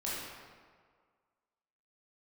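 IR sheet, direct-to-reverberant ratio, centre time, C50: -8.0 dB, 0.112 s, -2.5 dB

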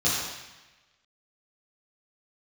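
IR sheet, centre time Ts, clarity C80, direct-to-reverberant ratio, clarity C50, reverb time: 82 ms, 1.5 dB, -9.5 dB, -0.5 dB, 1.1 s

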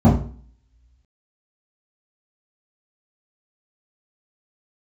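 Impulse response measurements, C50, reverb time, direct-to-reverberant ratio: 6.0 dB, 0.45 s, -11.0 dB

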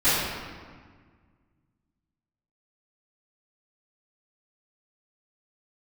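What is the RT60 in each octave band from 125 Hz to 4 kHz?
2.4, 2.2, 1.7, 1.6, 1.5, 1.1 s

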